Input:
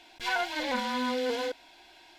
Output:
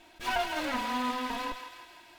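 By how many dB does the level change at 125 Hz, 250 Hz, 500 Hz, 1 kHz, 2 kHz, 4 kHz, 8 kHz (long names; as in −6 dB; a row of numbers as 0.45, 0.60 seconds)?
can't be measured, −1.5 dB, −6.0 dB, +1.5 dB, −2.5 dB, −2.5 dB, 0.0 dB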